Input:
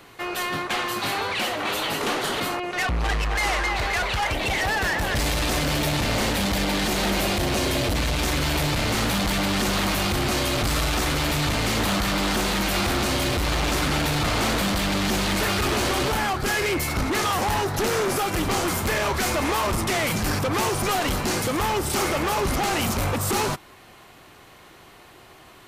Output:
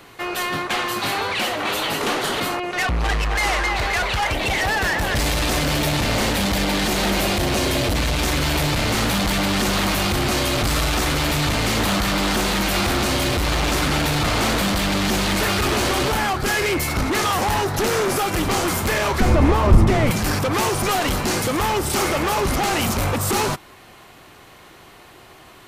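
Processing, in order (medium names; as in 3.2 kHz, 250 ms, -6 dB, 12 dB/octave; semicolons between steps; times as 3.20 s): 19.20–20.11 s: tilt EQ -3.5 dB/octave; trim +3 dB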